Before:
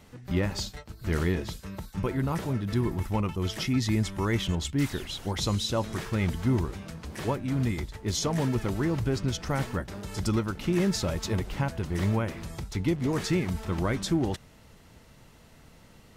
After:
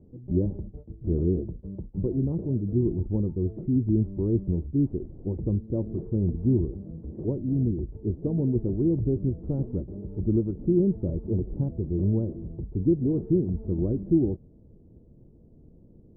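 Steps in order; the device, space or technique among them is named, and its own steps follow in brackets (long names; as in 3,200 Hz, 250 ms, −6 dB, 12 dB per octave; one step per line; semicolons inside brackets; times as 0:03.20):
under water (low-pass filter 450 Hz 24 dB per octave; parametric band 340 Hz +4.5 dB 0.4 octaves)
level +2 dB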